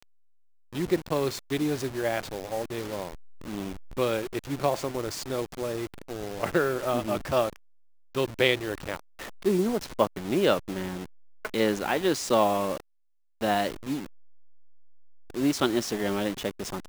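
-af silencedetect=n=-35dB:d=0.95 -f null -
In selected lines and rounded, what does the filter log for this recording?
silence_start: 14.06
silence_end: 15.30 | silence_duration: 1.24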